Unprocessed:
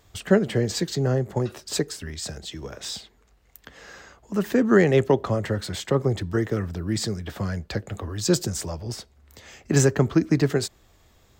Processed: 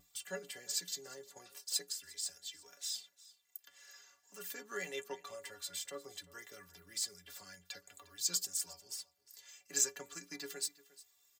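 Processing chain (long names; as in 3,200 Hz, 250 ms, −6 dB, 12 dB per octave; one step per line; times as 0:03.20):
first difference
pitch vibrato 1.9 Hz 43 cents
stiff-string resonator 85 Hz, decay 0.27 s, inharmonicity 0.03
single-tap delay 354 ms −20 dB
level +4 dB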